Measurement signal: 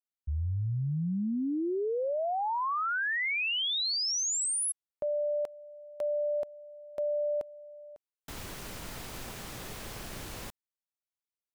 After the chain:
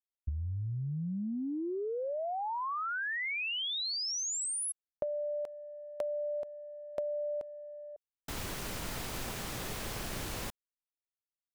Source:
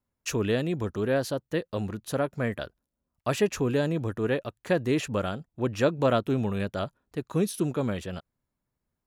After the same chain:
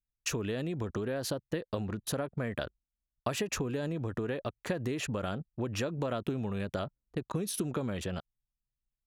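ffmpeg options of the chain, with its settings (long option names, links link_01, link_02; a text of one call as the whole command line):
ffmpeg -i in.wav -af "anlmdn=0.0251,acompressor=threshold=-41dB:ratio=5:attack=54:release=50:knee=1:detection=peak,volume=3dB" out.wav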